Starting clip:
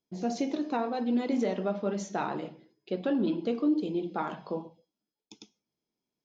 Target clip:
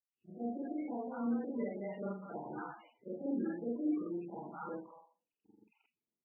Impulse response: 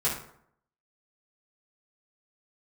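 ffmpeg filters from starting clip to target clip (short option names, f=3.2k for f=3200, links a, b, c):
-filter_complex "[0:a]afftfilt=real='re':imag='-im':win_size=4096:overlap=0.75,acrossover=split=820|4800[a][b][c];[a]adelay=190[d];[b]adelay=410[e];[d][e][c]amix=inputs=3:normalize=0,volume=-4dB" -ar 24000 -c:a libmp3lame -b:a 8k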